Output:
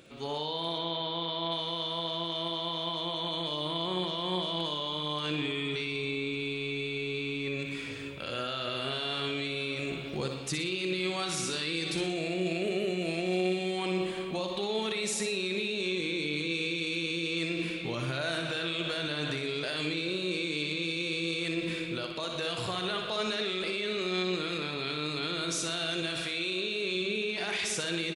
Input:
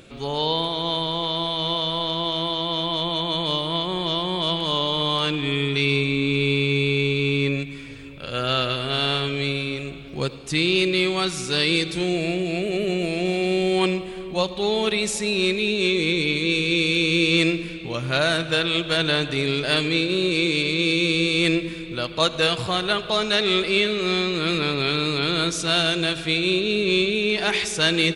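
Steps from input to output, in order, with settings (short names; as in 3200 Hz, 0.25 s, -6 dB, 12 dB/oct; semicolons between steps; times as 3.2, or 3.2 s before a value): 0.78–1.52 LPF 4700 Hz 24 dB/oct; 26.22–26.95 low shelf 320 Hz -9.5 dB; HPF 150 Hz 6 dB/oct; AGC gain up to 11.5 dB; limiter -16 dBFS, peak gain reduction 14.5 dB; feedback echo 60 ms, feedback 44%, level -7 dB; gain -7.5 dB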